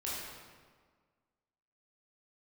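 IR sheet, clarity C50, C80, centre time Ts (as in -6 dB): -2.0 dB, 0.5 dB, 0.108 s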